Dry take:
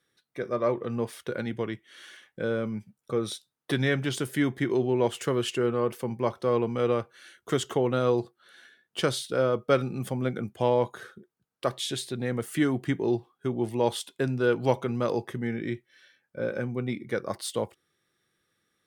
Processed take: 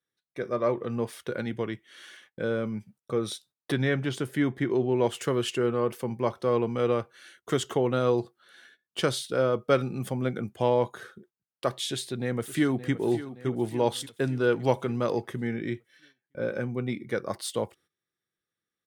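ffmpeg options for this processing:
-filter_complex "[0:a]asettb=1/sr,asplit=3[a][b][c];[a]atrim=end=3.724[d];[b]atrim=start=3.72:end=4.92,asetpts=PTS-STARTPTS,afade=t=in:d=0.004:c=qsin,afade=t=out:st=1.196:d=0.004:c=qsin,highshelf=f=3.5k:g=-8[e];[c]atrim=start=4.916[f];[d][e]acrossfade=d=0.004:c1=hsin:c2=qsin[g];[g][f]acrossfade=d=0.004:c1=qsin:c2=hsin,asplit=2[h][i];[i]afade=t=in:st=11.88:d=0.01,afade=t=out:st=12.92:d=0.01,aecho=0:1:570|1140|1710|2280|2850|3420:0.211349|0.116242|0.063933|0.0351632|0.0193397|0.0106369[j];[h][j]amix=inputs=2:normalize=0,agate=range=-15dB:threshold=-56dB:ratio=16:detection=peak"

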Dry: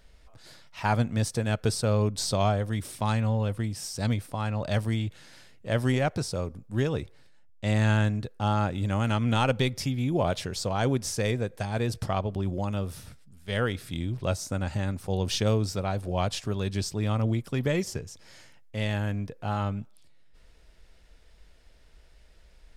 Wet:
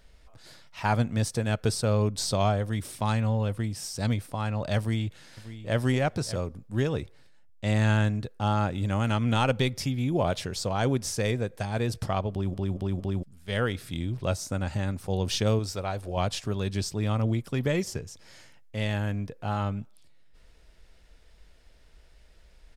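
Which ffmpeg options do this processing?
-filter_complex "[0:a]asplit=2[a][b];[b]afade=t=in:st=4.78:d=0.01,afade=t=out:st=5.79:d=0.01,aecho=0:1:590|1180:0.199526|0.0199526[c];[a][c]amix=inputs=2:normalize=0,asettb=1/sr,asplit=3[d][e][f];[d]atrim=end=15.594[g];[e]atrim=start=15.59:end=16.17,asetpts=PTS-STARTPTS,afade=t=in:d=0.004:c=qsin,afade=t=out:st=0.576:d=0.004:c=qsin,equalizer=f=170:t=o:w=1.7:g=-7[h];[f]atrim=start=16.166[i];[g][h]acrossfade=d=0.004:c1=hsin:c2=qsin[j];[j][i]acrossfade=d=0.004:c1=qsin:c2=hsin,asplit=5[k][l][m][n][o];[k]atrim=end=12.542[p];[l]atrim=start=12.308:end=12.542[q];[m]atrim=start=12.308:end=12.542[r];[n]atrim=start=12.308:end=12.542[s];[o]atrim=start=13.228[t];[p][q]acrossfade=d=0.004:c1=hsin:c2=hsin[u];[u][r]acrossfade=d=0.004:c1=hsin:c2=hsin[v];[v][s]acrossfade=d=0.004:c1=hsin:c2=hsin[w];[w][t]acrossfade=d=0.004:c1=hsin:c2=hsin"

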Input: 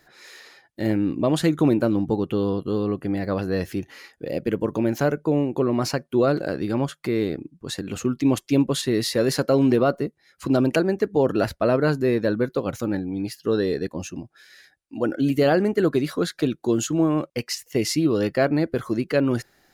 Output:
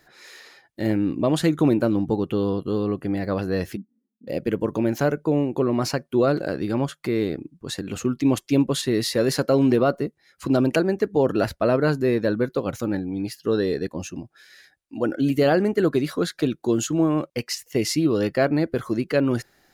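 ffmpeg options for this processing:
-filter_complex "[0:a]asplit=3[a][b][c];[a]afade=t=out:st=3.75:d=0.02[d];[b]asuperpass=centerf=220:order=4:qfactor=4.2,afade=t=in:st=3.75:d=0.02,afade=t=out:st=4.27:d=0.02[e];[c]afade=t=in:st=4.27:d=0.02[f];[d][e][f]amix=inputs=3:normalize=0"

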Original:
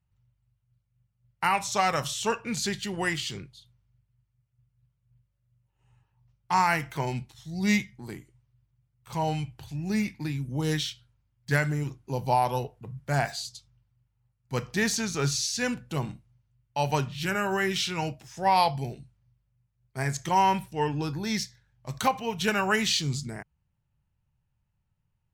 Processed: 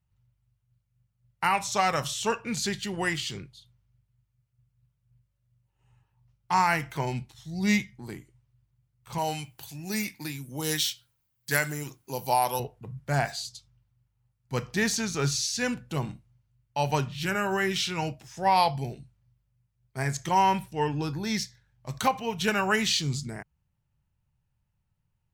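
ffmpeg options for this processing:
-filter_complex "[0:a]asettb=1/sr,asplit=3[a][b][c];[a]atrim=end=9.184[d];[b]atrim=start=9.18:end=12.6,asetpts=PTS-STARTPTS,afade=t=in:d=0.004:c=qsin,afade=t=out:st=3.416:d=0.004:c=qsin,aemphasis=mode=production:type=bsi[e];[c]atrim=start=12.596[f];[d][e]acrossfade=d=0.004:c1=hsin:c2=qsin[g];[g][f]acrossfade=d=0.004:c1=qsin:c2=hsin"

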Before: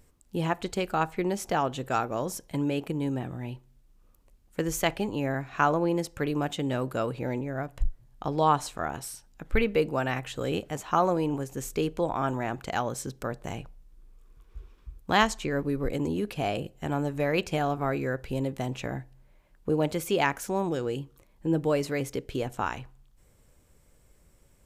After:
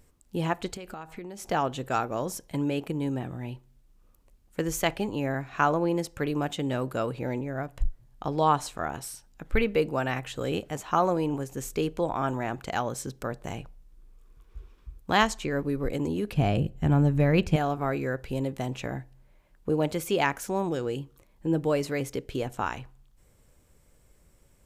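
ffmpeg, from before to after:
-filter_complex "[0:a]asettb=1/sr,asplit=3[a][b][c];[a]atrim=end=0.744[d];[b]atrim=start=0.74:end=1.48,asetpts=PTS-STARTPTS,afade=t=in:d=0.004:c=qsin,afade=t=out:st=0.736:d=0.004:c=qsin,acompressor=threshold=-35dB:ratio=16:attack=3.2:release=140:knee=1:detection=peak[e];[c]atrim=start=1.476[f];[d][e]acrossfade=d=0.004:c1=hsin:c2=qsin[g];[g][f]acrossfade=d=0.004:c1=qsin:c2=hsin,asettb=1/sr,asplit=3[h][i][j];[h]atrim=end=16.324[k];[i]atrim=start=16.32:end=17.56,asetpts=PTS-STARTPTS,afade=t=in:d=0.004:c=qsin,afade=t=out:st=1.236:d=0.004:c=qsin,bass=f=250:g=13,treble=f=4k:g=-4[l];[j]atrim=start=17.556[m];[k][l]acrossfade=d=0.004:c1=hsin:c2=qsin[n];[n][m]acrossfade=d=0.004:c1=qsin:c2=hsin"

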